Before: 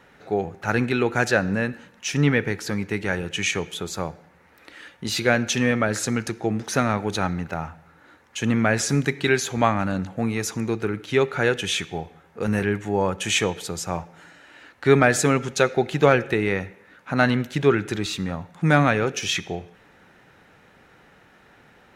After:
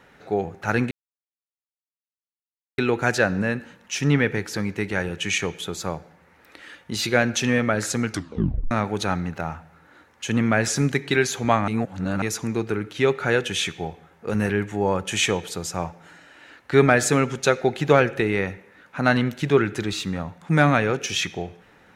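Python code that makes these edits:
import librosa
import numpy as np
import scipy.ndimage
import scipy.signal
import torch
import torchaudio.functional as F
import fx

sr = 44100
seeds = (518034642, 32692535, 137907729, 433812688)

y = fx.edit(x, sr, fx.insert_silence(at_s=0.91, length_s=1.87),
    fx.tape_stop(start_s=6.22, length_s=0.62),
    fx.reverse_span(start_s=9.81, length_s=0.54), tone=tone)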